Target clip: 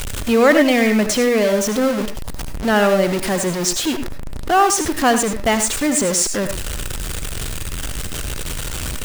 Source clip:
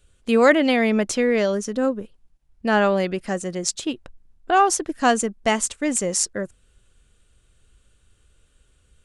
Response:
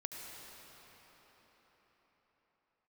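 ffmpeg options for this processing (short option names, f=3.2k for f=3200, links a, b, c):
-filter_complex "[0:a]aeval=exprs='val(0)+0.5*0.112*sgn(val(0))':c=same[a];[1:a]atrim=start_sample=2205,afade=t=out:st=0.16:d=0.01,atrim=end_sample=7497[b];[a][b]afir=irnorm=-1:irlink=0,volume=4.5dB"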